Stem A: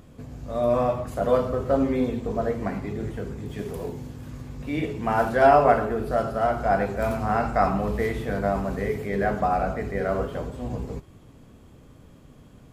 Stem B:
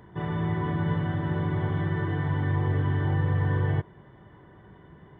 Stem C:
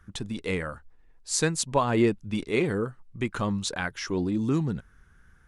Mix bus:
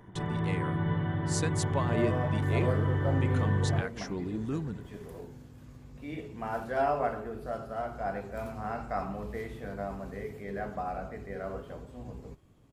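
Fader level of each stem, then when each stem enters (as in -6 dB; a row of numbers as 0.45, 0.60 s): -12.0, -3.0, -8.5 dB; 1.35, 0.00, 0.00 s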